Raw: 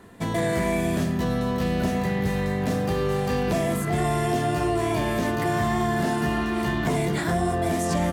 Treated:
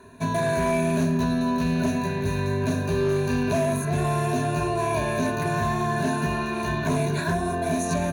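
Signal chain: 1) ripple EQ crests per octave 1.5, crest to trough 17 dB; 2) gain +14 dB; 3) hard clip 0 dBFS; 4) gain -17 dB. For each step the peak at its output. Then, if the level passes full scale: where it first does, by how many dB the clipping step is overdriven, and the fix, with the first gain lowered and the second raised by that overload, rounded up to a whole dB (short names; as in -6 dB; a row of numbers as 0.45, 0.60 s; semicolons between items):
-8.0, +6.0, 0.0, -17.0 dBFS; step 2, 6.0 dB; step 2 +8 dB, step 4 -11 dB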